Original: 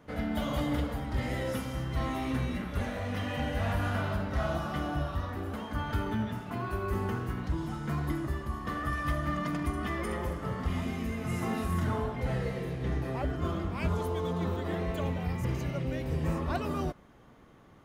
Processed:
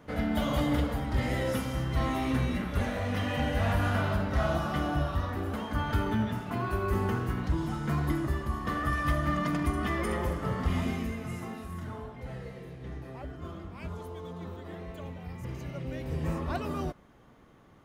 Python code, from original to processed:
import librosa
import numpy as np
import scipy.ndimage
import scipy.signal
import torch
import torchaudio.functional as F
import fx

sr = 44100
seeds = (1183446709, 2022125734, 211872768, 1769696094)

y = fx.gain(x, sr, db=fx.line((10.91, 3.0), (11.59, -9.0), (15.22, -9.0), (16.22, -1.0)))